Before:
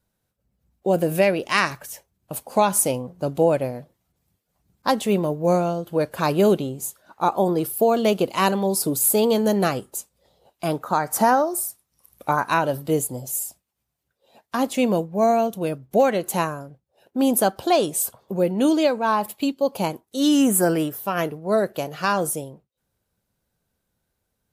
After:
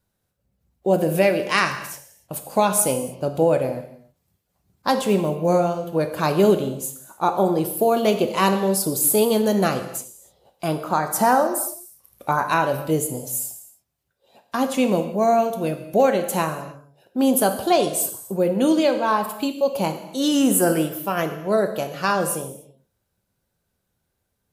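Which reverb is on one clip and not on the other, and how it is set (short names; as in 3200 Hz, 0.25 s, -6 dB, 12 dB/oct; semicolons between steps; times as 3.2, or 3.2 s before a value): non-linear reverb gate 0.33 s falling, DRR 6.5 dB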